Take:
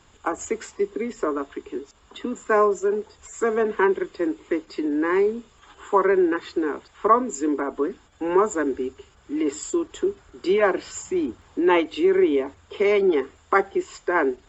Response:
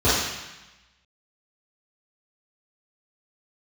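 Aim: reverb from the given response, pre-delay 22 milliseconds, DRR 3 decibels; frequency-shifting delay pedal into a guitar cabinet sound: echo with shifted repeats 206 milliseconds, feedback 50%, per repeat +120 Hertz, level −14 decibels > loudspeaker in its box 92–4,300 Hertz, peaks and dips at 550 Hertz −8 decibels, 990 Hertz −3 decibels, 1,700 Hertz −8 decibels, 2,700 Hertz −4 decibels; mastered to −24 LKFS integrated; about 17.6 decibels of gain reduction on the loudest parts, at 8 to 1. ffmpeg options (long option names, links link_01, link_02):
-filter_complex "[0:a]acompressor=threshold=-32dB:ratio=8,asplit=2[link_01][link_02];[1:a]atrim=start_sample=2205,adelay=22[link_03];[link_02][link_03]afir=irnorm=-1:irlink=0,volume=-23.5dB[link_04];[link_01][link_04]amix=inputs=2:normalize=0,asplit=6[link_05][link_06][link_07][link_08][link_09][link_10];[link_06]adelay=206,afreqshift=120,volume=-14dB[link_11];[link_07]adelay=412,afreqshift=240,volume=-20dB[link_12];[link_08]adelay=618,afreqshift=360,volume=-26dB[link_13];[link_09]adelay=824,afreqshift=480,volume=-32.1dB[link_14];[link_10]adelay=1030,afreqshift=600,volume=-38.1dB[link_15];[link_05][link_11][link_12][link_13][link_14][link_15]amix=inputs=6:normalize=0,highpass=92,equalizer=frequency=550:width_type=q:width=4:gain=-8,equalizer=frequency=990:width_type=q:width=4:gain=-3,equalizer=frequency=1700:width_type=q:width=4:gain=-8,equalizer=frequency=2700:width_type=q:width=4:gain=-4,lowpass=frequency=4300:width=0.5412,lowpass=frequency=4300:width=1.3066,volume=11.5dB"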